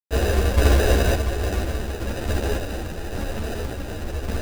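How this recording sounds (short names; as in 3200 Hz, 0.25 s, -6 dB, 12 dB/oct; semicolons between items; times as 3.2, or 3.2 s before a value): a quantiser's noise floor 6-bit, dither none; random-step tremolo; aliases and images of a low sample rate 1100 Hz, jitter 0%; a shimmering, thickened sound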